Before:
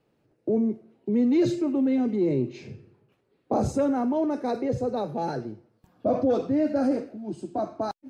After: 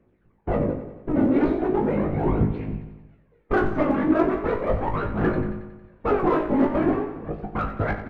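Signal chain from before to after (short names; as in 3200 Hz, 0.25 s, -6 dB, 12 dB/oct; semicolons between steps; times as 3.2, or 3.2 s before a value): minimum comb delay 0.5 ms; LPF 2400 Hz 24 dB/oct; de-hum 72.1 Hz, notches 40; whisperiser; harmonic-percussive split percussive +7 dB; phaser 0.38 Hz, delay 3.7 ms, feedback 61%; in parallel at -4 dB: soft clip -20 dBFS, distortion -8 dB; on the sum: resonator 52 Hz, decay 0.2 s, harmonics all, mix 100%; on a send: feedback echo 91 ms, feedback 59%, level -11.5 dB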